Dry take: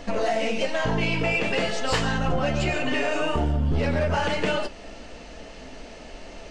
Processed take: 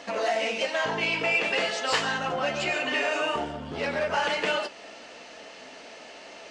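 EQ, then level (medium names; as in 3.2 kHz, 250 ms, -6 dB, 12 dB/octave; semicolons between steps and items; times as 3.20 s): frequency weighting A; 0.0 dB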